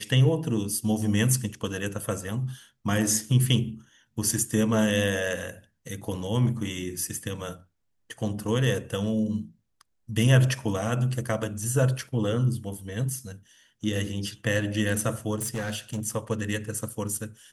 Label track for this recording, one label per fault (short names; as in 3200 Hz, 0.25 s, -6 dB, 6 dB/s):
15.350000	16.000000	clipped -26 dBFS